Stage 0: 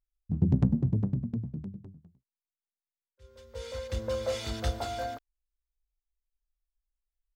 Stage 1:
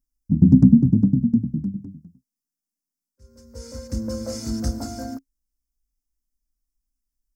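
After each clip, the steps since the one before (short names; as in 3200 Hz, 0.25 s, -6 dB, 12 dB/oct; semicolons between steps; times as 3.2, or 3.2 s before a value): EQ curve 110 Hz 0 dB, 270 Hz +14 dB, 390 Hz -5 dB, 760 Hz -9 dB, 1500 Hz -8 dB, 3500 Hz -23 dB, 5200 Hz +5 dB, 7700 Hz +3 dB; gain +5 dB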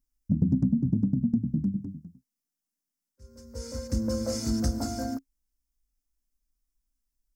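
compressor 6:1, threshold -21 dBFS, peak gain reduction 13.5 dB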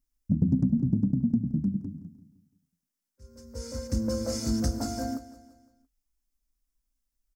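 feedback echo 0.17 s, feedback 48%, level -16 dB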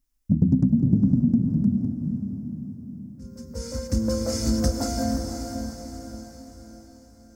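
diffused feedback echo 0.512 s, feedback 49%, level -6 dB; gain +4.5 dB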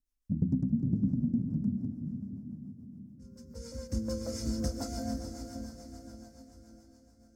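rotary speaker horn 7 Hz; gain -8.5 dB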